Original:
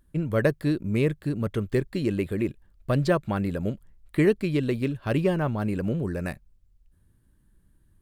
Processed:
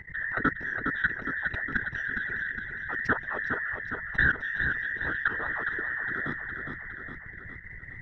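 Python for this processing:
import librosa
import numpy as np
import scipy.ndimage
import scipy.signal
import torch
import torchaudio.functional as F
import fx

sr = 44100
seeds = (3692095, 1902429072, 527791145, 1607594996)

y = fx.band_invert(x, sr, width_hz=2000)
y = fx.low_shelf(y, sr, hz=220.0, db=7.0)
y = fx.level_steps(y, sr, step_db=20)
y = fx.whisperise(y, sr, seeds[0])
y = fx.spacing_loss(y, sr, db_at_10k=36)
y = fx.echo_feedback(y, sr, ms=411, feedback_pct=40, wet_db=-10)
y = fx.env_flatten(y, sr, amount_pct=50)
y = y * librosa.db_to_amplitude(2.5)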